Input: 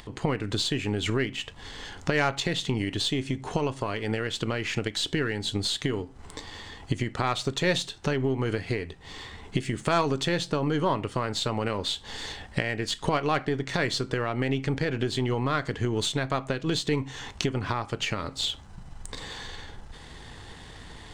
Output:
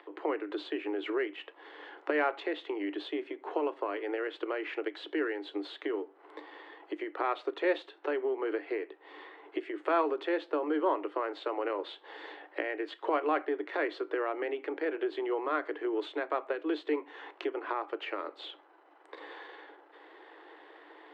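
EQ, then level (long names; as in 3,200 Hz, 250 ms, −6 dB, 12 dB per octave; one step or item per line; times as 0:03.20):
Chebyshev high-pass filter 300 Hz, order 8
high-frequency loss of the air 500 metres
high-shelf EQ 3,700 Hz −6.5 dB
0.0 dB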